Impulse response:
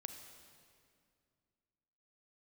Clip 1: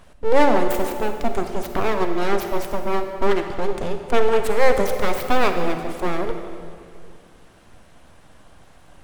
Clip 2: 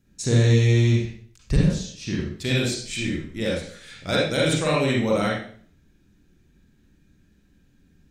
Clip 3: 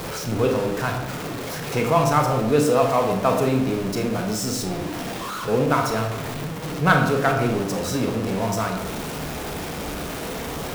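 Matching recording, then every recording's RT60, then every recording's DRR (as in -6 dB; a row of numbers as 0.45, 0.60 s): 1; 2.3, 0.50, 0.90 s; 6.0, -5.0, 3.5 dB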